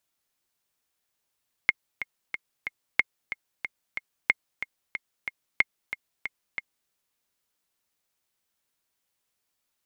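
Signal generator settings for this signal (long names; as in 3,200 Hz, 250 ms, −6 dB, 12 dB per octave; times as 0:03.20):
click track 184 BPM, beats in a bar 4, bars 4, 2,140 Hz, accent 12 dB −5.5 dBFS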